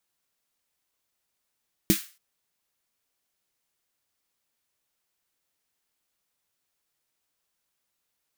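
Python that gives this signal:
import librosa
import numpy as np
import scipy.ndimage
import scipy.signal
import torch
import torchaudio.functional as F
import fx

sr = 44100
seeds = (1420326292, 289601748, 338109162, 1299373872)

y = fx.drum_snare(sr, seeds[0], length_s=0.28, hz=200.0, second_hz=320.0, noise_db=-7.0, noise_from_hz=1500.0, decay_s=0.1, noise_decay_s=0.35)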